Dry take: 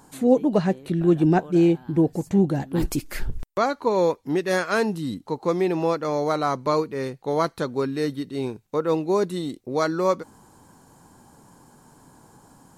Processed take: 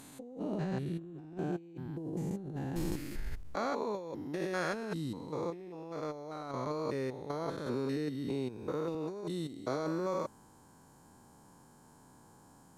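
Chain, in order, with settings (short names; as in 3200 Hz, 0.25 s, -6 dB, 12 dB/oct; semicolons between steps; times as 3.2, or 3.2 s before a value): stepped spectrum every 0.2 s; negative-ratio compressor -27 dBFS, ratio -0.5; 5.5–6.54 gate -25 dBFS, range -6 dB; 7.66–8.95 three-band squash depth 70%; gain -8.5 dB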